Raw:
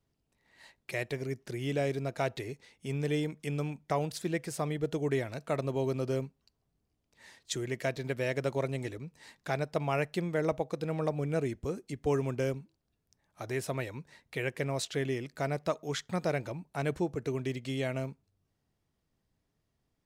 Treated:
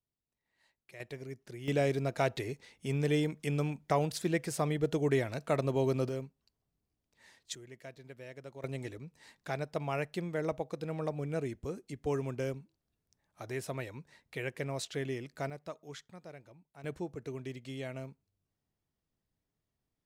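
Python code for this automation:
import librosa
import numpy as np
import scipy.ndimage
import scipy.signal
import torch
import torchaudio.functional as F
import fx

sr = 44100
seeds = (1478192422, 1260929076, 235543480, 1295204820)

y = fx.gain(x, sr, db=fx.steps((0.0, -16.0), (1.0, -8.0), (1.68, 1.5), (6.09, -5.5), (7.55, -16.0), (8.64, -4.0), (15.5, -12.0), (16.1, -18.5), (16.84, -7.5)))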